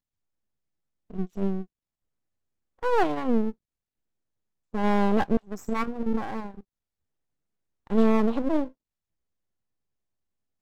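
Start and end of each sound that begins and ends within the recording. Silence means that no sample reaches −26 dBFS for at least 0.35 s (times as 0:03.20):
0:01.18–0:01.62
0:02.83–0:03.50
0:04.74–0:06.46
0:07.91–0:08.64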